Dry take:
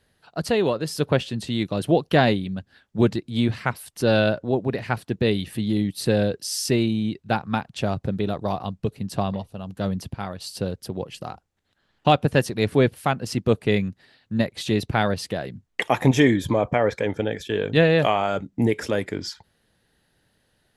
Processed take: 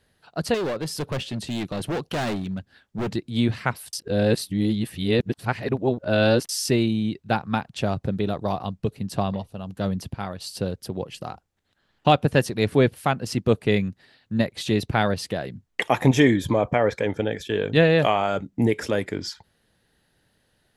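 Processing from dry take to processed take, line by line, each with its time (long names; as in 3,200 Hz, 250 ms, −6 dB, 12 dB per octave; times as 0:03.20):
0:00.54–0:03.09: gain into a clipping stage and back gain 24 dB
0:03.93–0:06.49: reverse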